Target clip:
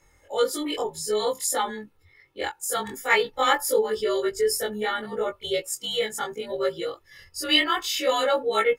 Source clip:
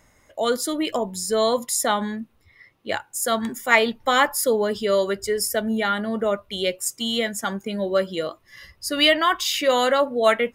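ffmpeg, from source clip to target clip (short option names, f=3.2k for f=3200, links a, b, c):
-af "afftfilt=real='re':imag='-im':win_size=2048:overlap=0.75,aecho=1:1:2.3:0.65,atempo=1.2"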